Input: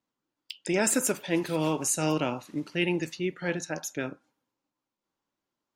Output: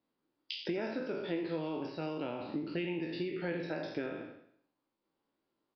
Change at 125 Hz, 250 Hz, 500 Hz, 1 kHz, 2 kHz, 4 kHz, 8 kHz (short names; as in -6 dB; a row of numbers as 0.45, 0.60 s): -9.5 dB, -7.0 dB, -6.5 dB, -9.5 dB, -10.0 dB, -7.0 dB, under -40 dB